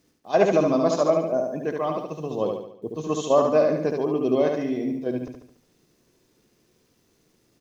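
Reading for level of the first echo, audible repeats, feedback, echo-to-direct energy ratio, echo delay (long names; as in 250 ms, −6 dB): −4.0 dB, 5, 48%, −3.0 dB, 72 ms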